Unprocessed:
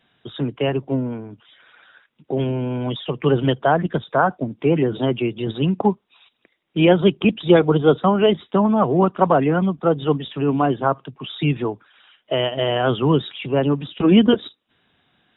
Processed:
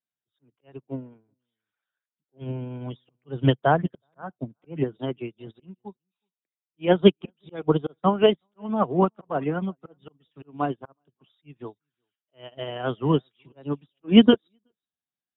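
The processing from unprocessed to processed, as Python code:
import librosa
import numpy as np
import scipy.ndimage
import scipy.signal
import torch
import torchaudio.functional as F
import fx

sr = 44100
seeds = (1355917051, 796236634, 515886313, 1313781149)

y = fx.dynamic_eq(x, sr, hz=130.0, q=0.87, threshold_db=-34.0, ratio=4.0, max_db=5, at=(2.41, 4.84))
y = fx.auto_swell(y, sr, attack_ms=196.0)
y = y + 10.0 ** (-21.5 / 20.0) * np.pad(y, (int(372 * sr / 1000.0), 0))[:len(y)]
y = fx.upward_expand(y, sr, threshold_db=-37.0, expansion=2.5)
y = y * 10.0 ** (2.5 / 20.0)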